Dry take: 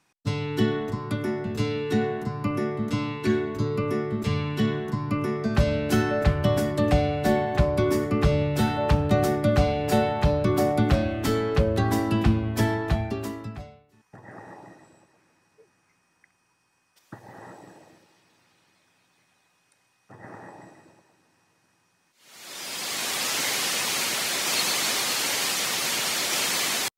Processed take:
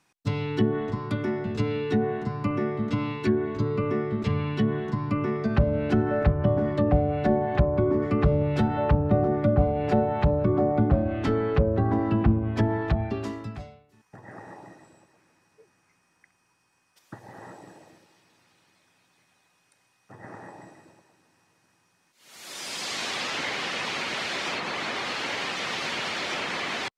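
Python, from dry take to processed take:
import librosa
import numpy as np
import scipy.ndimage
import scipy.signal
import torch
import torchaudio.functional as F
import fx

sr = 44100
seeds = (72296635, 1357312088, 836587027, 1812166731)

y = fx.env_lowpass_down(x, sr, base_hz=860.0, full_db=-18.0)
y = fx.high_shelf(y, sr, hz=3300.0, db=9.5, at=(8.02, 8.68))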